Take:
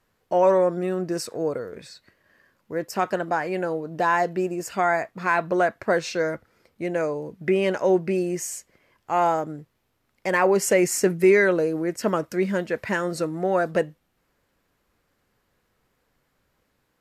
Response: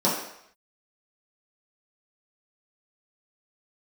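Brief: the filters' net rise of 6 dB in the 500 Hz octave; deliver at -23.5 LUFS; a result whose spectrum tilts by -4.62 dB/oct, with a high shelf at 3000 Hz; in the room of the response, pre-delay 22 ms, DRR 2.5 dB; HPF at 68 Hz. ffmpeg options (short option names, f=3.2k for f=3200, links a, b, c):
-filter_complex "[0:a]highpass=68,equalizer=f=500:t=o:g=7.5,highshelf=f=3k:g=5.5,asplit=2[a][b];[1:a]atrim=start_sample=2205,adelay=22[c];[b][c]afir=irnorm=-1:irlink=0,volume=-17.5dB[d];[a][d]amix=inputs=2:normalize=0,volume=-9dB"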